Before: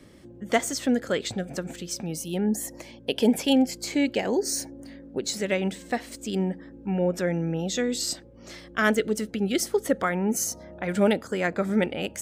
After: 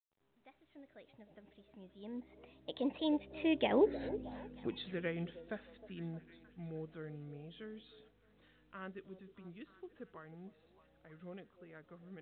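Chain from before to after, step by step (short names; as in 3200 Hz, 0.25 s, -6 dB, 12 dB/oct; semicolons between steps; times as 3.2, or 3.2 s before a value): opening faded in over 2.77 s; Doppler pass-by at 3.98, 45 m/s, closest 13 m; low shelf 96 Hz +4 dB; on a send: delay with a stepping band-pass 0.31 s, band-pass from 510 Hz, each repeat 0.7 oct, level -12 dB; on the sum: gain -2.5 dB; µ-law 64 kbps 8000 Hz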